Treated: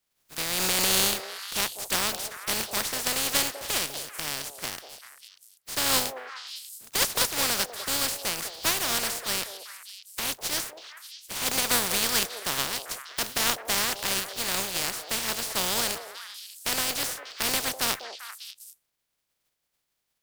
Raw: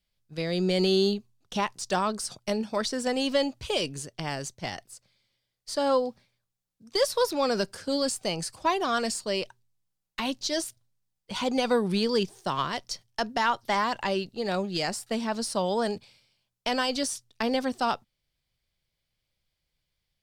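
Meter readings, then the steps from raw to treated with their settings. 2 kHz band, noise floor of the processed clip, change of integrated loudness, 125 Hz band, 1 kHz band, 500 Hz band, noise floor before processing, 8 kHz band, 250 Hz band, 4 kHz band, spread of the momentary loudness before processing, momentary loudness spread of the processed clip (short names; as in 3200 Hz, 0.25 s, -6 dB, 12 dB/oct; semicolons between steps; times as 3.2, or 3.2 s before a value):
+4.0 dB, -79 dBFS, +2.0 dB, -5.5 dB, -4.0 dB, -9.0 dB, -82 dBFS, +10.5 dB, -9.5 dB, +5.0 dB, 10 LU, 16 LU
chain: spectral contrast lowered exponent 0.19; delay with a stepping band-pass 0.197 s, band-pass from 570 Hz, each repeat 1.4 oct, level -5.5 dB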